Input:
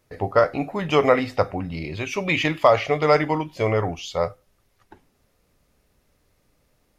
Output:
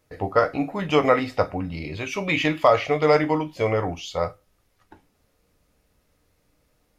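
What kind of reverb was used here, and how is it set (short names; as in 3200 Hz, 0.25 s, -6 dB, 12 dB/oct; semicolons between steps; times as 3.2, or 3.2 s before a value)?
non-linear reverb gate 80 ms falling, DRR 8.5 dB; gain -1.5 dB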